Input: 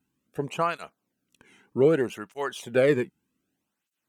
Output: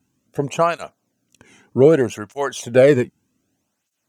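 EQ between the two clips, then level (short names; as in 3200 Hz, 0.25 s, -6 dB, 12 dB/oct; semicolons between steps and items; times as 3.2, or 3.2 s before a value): fifteen-band EQ 100 Hz +11 dB, 250 Hz +3 dB, 630 Hz +7 dB, 6300 Hz +9 dB; +5.0 dB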